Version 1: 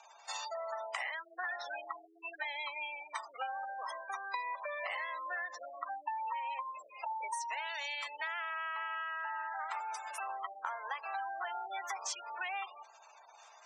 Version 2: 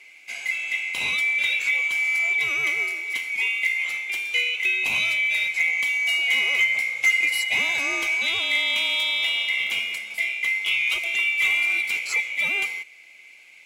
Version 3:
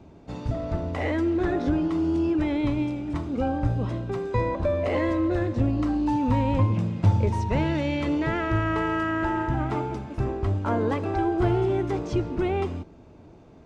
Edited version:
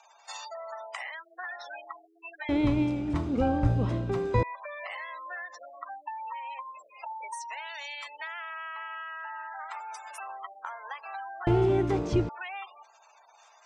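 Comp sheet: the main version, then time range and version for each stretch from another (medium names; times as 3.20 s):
1
2.49–4.43 s: from 3
11.47–12.29 s: from 3
not used: 2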